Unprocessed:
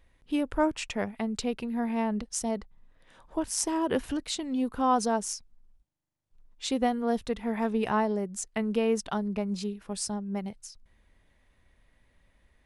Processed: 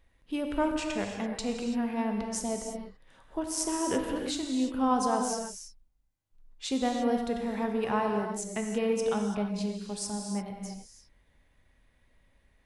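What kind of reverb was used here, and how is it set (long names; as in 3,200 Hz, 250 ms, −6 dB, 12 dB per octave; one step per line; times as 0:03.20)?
reverb whose tail is shaped and stops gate 360 ms flat, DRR 2 dB
level −3 dB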